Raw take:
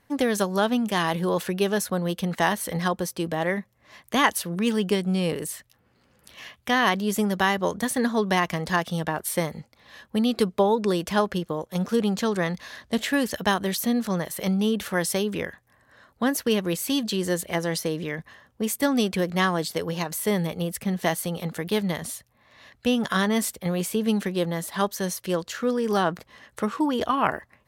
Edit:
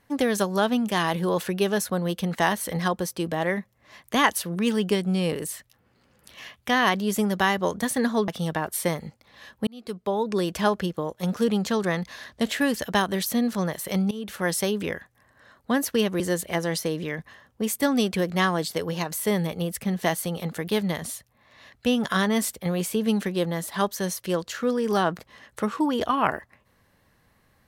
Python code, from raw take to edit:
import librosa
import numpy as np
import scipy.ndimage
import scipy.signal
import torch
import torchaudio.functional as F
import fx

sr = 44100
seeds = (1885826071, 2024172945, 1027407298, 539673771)

y = fx.edit(x, sr, fx.cut(start_s=8.28, length_s=0.52),
    fx.fade_in_span(start_s=10.19, length_s=0.84),
    fx.fade_in_from(start_s=14.63, length_s=0.38, floor_db=-17.5),
    fx.cut(start_s=16.72, length_s=0.48), tone=tone)